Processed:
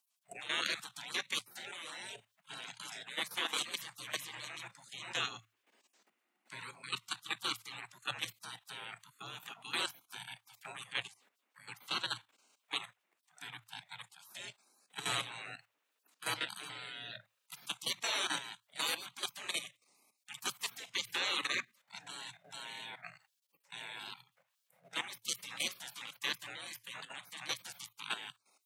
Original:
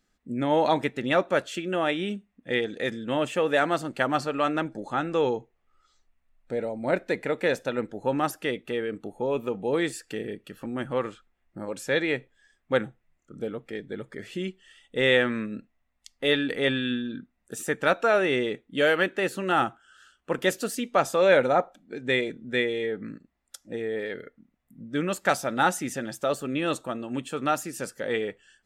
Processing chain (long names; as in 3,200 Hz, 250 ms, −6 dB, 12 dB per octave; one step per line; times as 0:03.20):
gate on every frequency bin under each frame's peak −30 dB weak
output level in coarse steps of 12 dB
frequency shifter +110 Hz
level +13.5 dB